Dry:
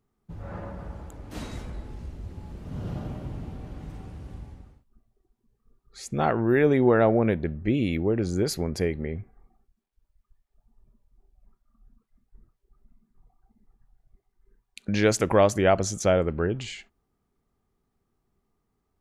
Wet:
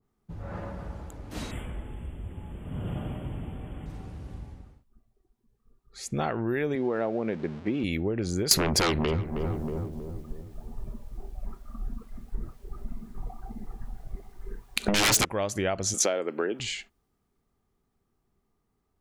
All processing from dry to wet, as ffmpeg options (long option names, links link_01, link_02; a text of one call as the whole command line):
ffmpeg -i in.wav -filter_complex "[0:a]asettb=1/sr,asplit=3[link_01][link_02][link_03];[link_01]atrim=end=1.514[link_04];[link_02]atrim=start=1.51:end=3.86,asetpts=PTS-STARTPTS,afade=type=in:duration=0.004:curve=qsin,afade=type=out:start_time=2.346:duration=0.004:curve=qsin,asuperstop=centerf=5100:order=20:qfactor=1.3,equalizer=frequency=3300:width_type=o:width=1.2:gain=4[link_05];[link_03]atrim=start=3.856[link_06];[link_04][link_05]acrossfade=duration=0.004:curve1=hsin:curve2=qsin[link_07];[link_07][link_06]acrossfade=duration=0.004:curve1=qsin:curve2=hsin,asettb=1/sr,asplit=3[link_08][link_09][link_10];[link_08]atrim=end=6.754[link_11];[link_09]atrim=start=6.75:end=7.84,asetpts=PTS-STARTPTS,afade=type=in:duration=0.004:curve=qsin,afade=type=out:start_time=1.086:duration=0.004:curve=qsin,aeval=exprs='val(0)+0.5*0.0168*sgn(val(0))':channel_layout=same,highpass=190,lowpass=5200,highshelf=frequency=2200:gain=-11.5[link_12];[link_10]atrim=start=7.836[link_13];[link_11][link_12]acrossfade=duration=0.004:curve1=hsin:curve2=qsin[link_14];[link_14][link_13]acrossfade=duration=0.004:curve1=qsin:curve2=hsin,asettb=1/sr,asplit=3[link_15][link_16][link_17];[link_15]atrim=end=8.514[link_18];[link_16]atrim=start=8.51:end=15.25,asetpts=PTS-STARTPTS,afade=type=in:duration=0.004:curve=qsin,afade=type=out:start_time=6.736:duration=0.004:curve=qsin,equalizer=frequency=570:width_type=o:width=1.6:gain=4,aeval=exprs='0.501*sin(PI/2*8.91*val(0)/0.501)':channel_layout=same,asplit=2[link_19][link_20];[link_20]adelay=318,lowpass=frequency=900:poles=1,volume=-14dB,asplit=2[link_21][link_22];[link_22]adelay=318,lowpass=frequency=900:poles=1,volume=0.51,asplit=2[link_23][link_24];[link_24]adelay=318,lowpass=frequency=900:poles=1,volume=0.51,asplit=2[link_25][link_26];[link_26]adelay=318,lowpass=frequency=900:poles=1,volume=0.51,asplit=2[link_27][link_28];[link_28]adelay=318,lowpass=frequency=900:poles=1,volume=0.51[link_29];[link_19][link_21][link_23][link_25][link_27][link_29]amix=inputs=6:normalize=0,atrim=end_sample=297234[link_30];[link_17]atrim=start=15.246[link_31];[link_18][link_30]acrossfade=duration=0.004:curve1=hsin:curve2=qsin[link_32];[link_32][link_31]acrossfade=duration=0.004:curve1=qsin:curve2=hsin,asettb=1/sr,asplit=3[link_33][link_34][link_35];[link_33]atrim=end=15.944[link_36];[link_34]atrim=start=15.94:end=16.6,asetpts=PTS-STARTPTS,afade=type=in:duration=0.004:curve=qsin,afade=type=out:start_time=0.656:duration=0.004:curve=qsin,highpass=frequency=260:width=0.5412,highpass=frequency=260:width=1.3066,acontrast=39[link_37];[link_35]atrim=start=16.596[link_38];[link_36][link_37]acrossfade=duration=0.004:curve1=hsin:curve2=qsin[link_39];[link_39][link_38]acrossfade=duration=0.004:curve1=qsin:curve2=hsin,acompressor=threshold=-24dB:ratio=12,adynamicequalizer=threshold=0.00501:dfrequency=1900:dqfactor=0.7:tfrequency=1900:tqfactor=0.7:attack=5:release=100:ratio=0.375:range=3:mode=boostabove:tftype=highshelf" out.wav